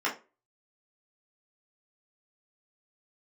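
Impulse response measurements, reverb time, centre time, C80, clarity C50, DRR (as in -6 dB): 0.30 s, 20 ms, 18.5 dB, 11.0 dB, -5.5 dB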